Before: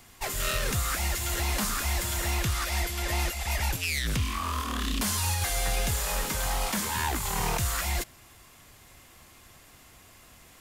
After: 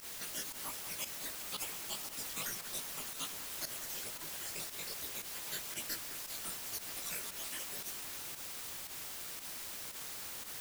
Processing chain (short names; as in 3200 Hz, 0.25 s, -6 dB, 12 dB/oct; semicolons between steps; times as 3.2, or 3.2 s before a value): random spectral dropouts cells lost 63%; reverb removal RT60 1.5 s; spectral gate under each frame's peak -25 dB weak; in parallel at 0 dB: compressor, threshold -49 dBFS, peak gain reduction 11 dB; on the sum: chorus 2.4 Hz, delay 16.5 ms, depth 5.8 ms; requantised 8-bit, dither triangular; pump 115 bpm, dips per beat 1, -16 dB, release 68 ms; on a send: echo with dull and thin repeats by turns 0.191 s, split 2400 Hz, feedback 85%, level -11 dB; on the sum: gain +3 dB